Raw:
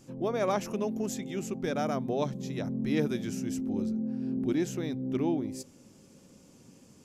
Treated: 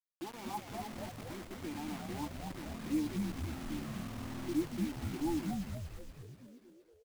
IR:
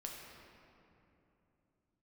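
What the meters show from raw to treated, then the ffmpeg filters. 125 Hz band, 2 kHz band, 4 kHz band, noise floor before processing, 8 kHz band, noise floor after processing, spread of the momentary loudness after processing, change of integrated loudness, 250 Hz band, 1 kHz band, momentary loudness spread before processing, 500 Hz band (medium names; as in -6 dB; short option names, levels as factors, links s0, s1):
-5.5 dB, -6.0 dB, -4.0 dB, -57 dBFS, -7.5 dB, -65 dBFS, 15 LU, -8.0 dB, -7.0 dB, -7.0 dB, 5 LU, -13.5 dB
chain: -filter_complex "[0:a]equalizer=f=870:t=o:w=1.1:g=6.5,aecho=1:1:5.9:0.5,adynamicequalizer=threshold=0.0112:dfrequency=180:dqfactor=0.87:tfrequency=180:tqfactor=0.87:attack=5:release=100:ratio=0.375:range=2:mode=boostabove:tftype=bell,asplit=3[s0][s1][s2];[s0]bandpass=f=300:t=q:w=8,volume=1[s3];[s1]bandpass=f=870:t=q:w=8,volume=0.501[s4];[s2]bandpass=f=2240:t=q:w=8,volume=0.355[s5];[s3][s4][s5]amix=inputs=3:normalize=0,acrusher=bits=6:mix=0:aa=0.000001,asplit=2[s6][s7];[s7]asplit=8[s8][s9][s10][s11][s12][s13][s14][s15];[s8]adelay=238,afreqshift=-110,volume=0.668[s16];[s9]adelay=476,afreqshift=-220,volume=0.394[s17];[s10]adelay=714,afreqshift=-330,volume=0.232[s18];[s11]adelay=952,afreqshift=-440,volume=0.138[s19];[s12]adelay=1190,afreqshift=-550,volume=0.0813[s20];[s13]adelay=1428,afreqshift=-660,volume=0.0479[s21];[s14]adelay=1666,afreqshift=-770,volume=0.0282[s22];[s15]adelay=1904,afreqshift=-880,volume=0.0166[s23];[s16][s17][s18][s19][s20][s21][s22][s23]amix=inputs=8:normalize=0[s24];[s6][s24]amix=inputs=2:normalize=0,volume=0.562"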